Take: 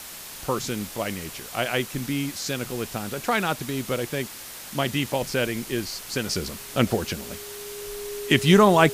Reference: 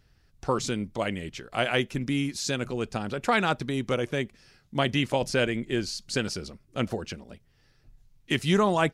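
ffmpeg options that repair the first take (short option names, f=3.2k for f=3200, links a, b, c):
-af "bandreject=f=410:w=30,afwtdn=0.013,asetnsamples=n=441:p=0,asendcmd='6.29 volume volume -7dB',volume=0dB"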